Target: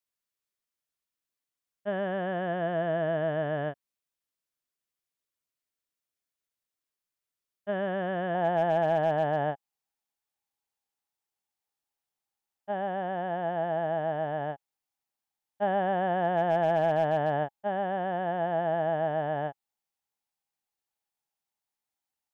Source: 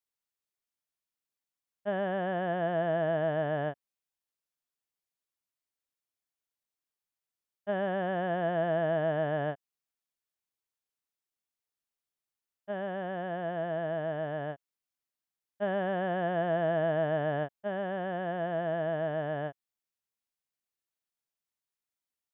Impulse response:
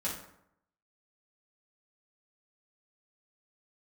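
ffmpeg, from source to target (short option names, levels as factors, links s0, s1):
-af "asetnsamples=n=441:p=0,asendcmd='8.35 equalizer g 12.5',equalizer=f=820:t=o:w=0.27:g=-3.5,asoftclip=type=hard:threshold=0.106,volume=1.12"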